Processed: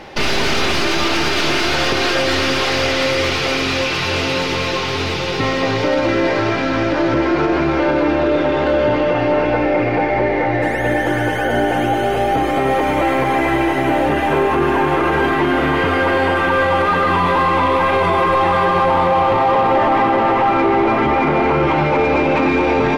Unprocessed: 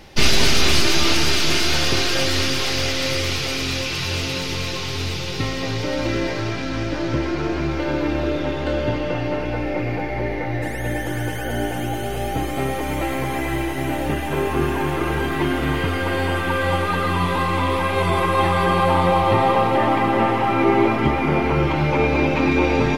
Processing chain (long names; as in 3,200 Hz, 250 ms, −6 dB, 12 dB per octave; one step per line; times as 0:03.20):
mid-hump overdrive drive 19 dB, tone 1,000 Hz, clips at −2 dBFS
brickwall limiter −11 dBFS, peak gain reduction 6.5 dB
level +3 dB